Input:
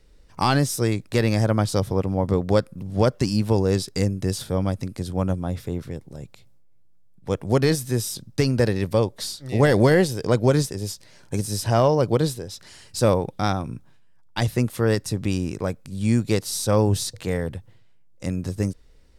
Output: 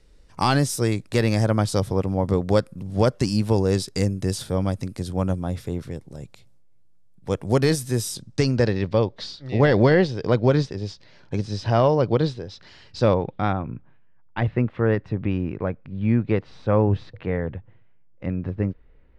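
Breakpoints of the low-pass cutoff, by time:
low-pass 24 dB/octave
8.06 s 12 kHz
8.88 s 4.6 kHz
13.04 s 4.6 kHz
13.64 s 2.5 kHz

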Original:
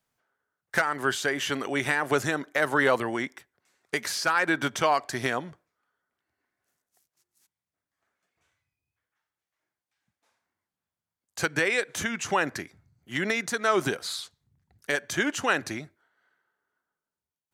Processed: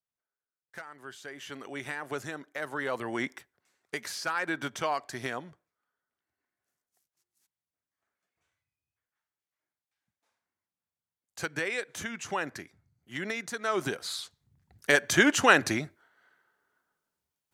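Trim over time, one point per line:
1.08 s -19 dB
1.68 s -11 dB
2.87 s -11 dB
3.30 s +1 dB
3.97 s -7 dB
13.59 s -7 dB
14.96 s +5 dB

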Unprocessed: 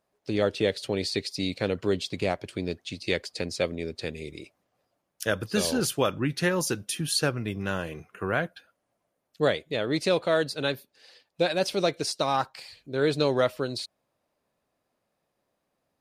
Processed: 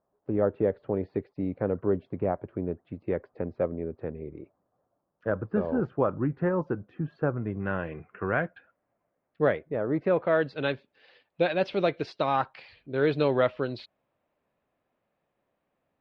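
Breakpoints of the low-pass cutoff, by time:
low-pass 24 dB/octave
7.35 s 1.3 kHz
7.81 s 2.2 kHz
9.47 s 2.2 kHz
9.83 s 1.3 kHz
10.61 s 3.1 kHz

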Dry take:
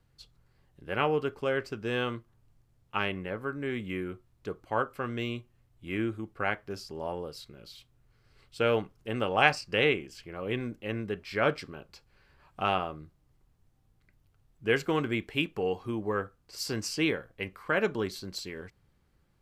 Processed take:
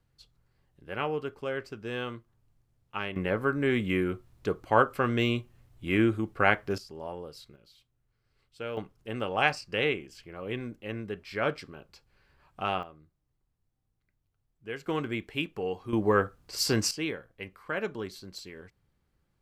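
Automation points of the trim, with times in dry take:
-4 dB
from 3.16 s +7 dB
from 6.78 s -3.5 dB
from 7.56 s -10.5 dB
from 8.77 s -2.5 dB
from 12.83 s -11.5 dB
from 14.86 s -2.5 dB
from 15.93 s +7 dB
from 16.91 s -5 dB

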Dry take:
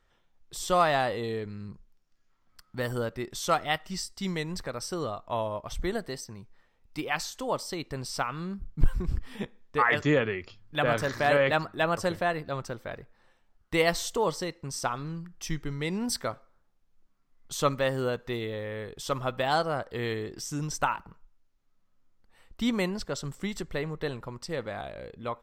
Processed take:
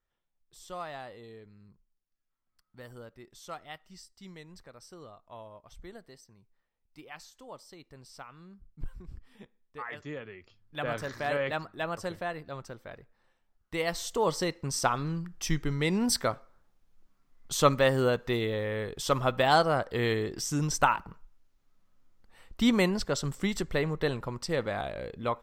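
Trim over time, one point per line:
10.24 s -16 dB
10.85 s -7 dB
13.82 s -7 dB
14.46 s +3.5 dB

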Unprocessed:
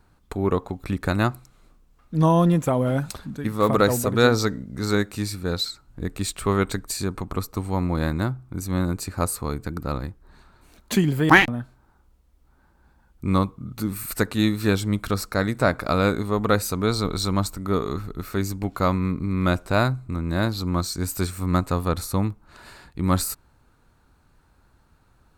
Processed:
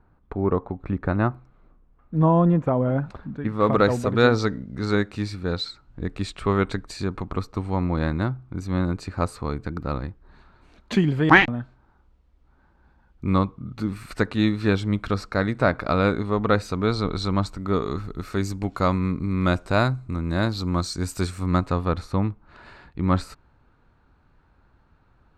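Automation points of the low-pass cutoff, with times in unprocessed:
3.17 s 1.5 kHz
3.83 s 3.8 kHz
17.36 s 3.8 kHz
18.19 s 7 kHz
21.30 s 7 kHz
21.99 s 3 kHz

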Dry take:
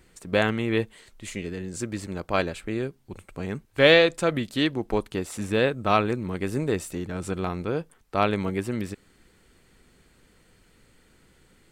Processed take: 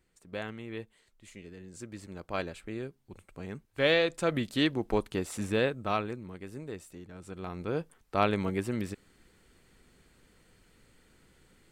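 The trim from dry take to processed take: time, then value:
1.30 s -15.5 dB
2.44 s -9 dB
3.96 s -9 dB
4.41 s -3 dB
5.43 s -3 dB
6.45 s -15 dB
7.25 s -15 dB
7.78 s -3.5 dB

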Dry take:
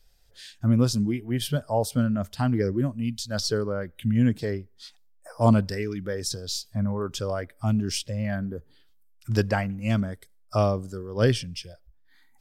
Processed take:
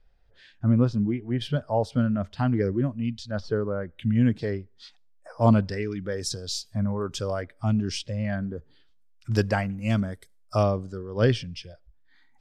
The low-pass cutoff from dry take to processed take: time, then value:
2 kHz
from 1.41 s 3.5 kHz
from 3.31 s 1.8 kHz
from 3.99 s 4.6 kHz
from 6.12 s 9.2 kHz
from 7.42 s 5.3 kHz
from 9.32 s 11 kHz
from 10.63 s 4.4 kHz

